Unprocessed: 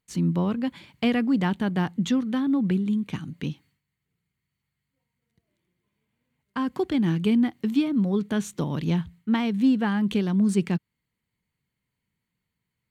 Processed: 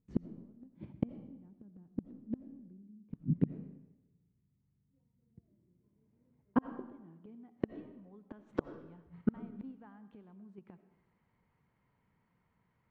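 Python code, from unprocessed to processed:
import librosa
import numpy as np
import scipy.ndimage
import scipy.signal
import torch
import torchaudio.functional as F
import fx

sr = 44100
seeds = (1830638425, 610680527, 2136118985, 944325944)

p1 = fx.tilt_shelf(x, sr, db=-6.0, hz=810.0)
p2 = fx.level_steps(p1, sr, step_db=23)
p3 = p1 + (p2 * 10.0 ** (0.0 / 20.0))
p4 = fx.filter_sweep_lowpass(p3, sr, from_hz=270.0, to_hz=920.0, start_s=5.67, end_s=7.78, q=1.1)
p5 = fx.gate_flip(p4, sr, shuts_db=-25.0, range_db=-38)
p6 = fx.rev_freeverb(p5, sr, rt60_s=0.96, hf_ratio=0.9, predelay_ms=45, drr_db=11.0)
y = p6 * 10.0 ** (9.0 / 20.0)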